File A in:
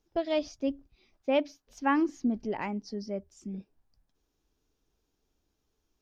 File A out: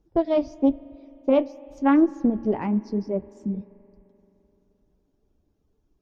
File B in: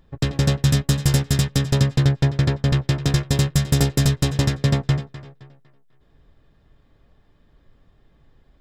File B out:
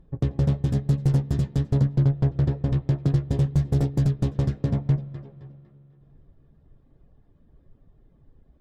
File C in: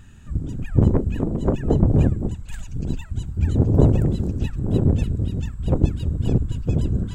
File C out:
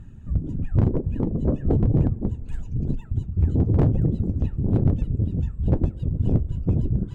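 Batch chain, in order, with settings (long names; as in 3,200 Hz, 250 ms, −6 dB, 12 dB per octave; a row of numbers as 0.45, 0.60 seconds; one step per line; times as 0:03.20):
reverb reduction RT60 0.64 s
tilt shelving filter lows +9.5 dB
in parallel at +1.5 dB: downward compressor 10 to 1, threshold −18 dBFS
on the sum: tube saturation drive −2 dB, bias 0.35
spring reverb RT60 3.3 s, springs 43 ms, chirp 65 ms, DRR 19 dB
hard clipping −2 dBFS
flanger 1 Hz, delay 5.5 ms, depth 8.3 ms, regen −56%
highs frequency-modulated by the lows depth 0.18 ms
loudness normalisation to −24 LKFS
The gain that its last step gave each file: +1.5, −8.0, −5.5 decibels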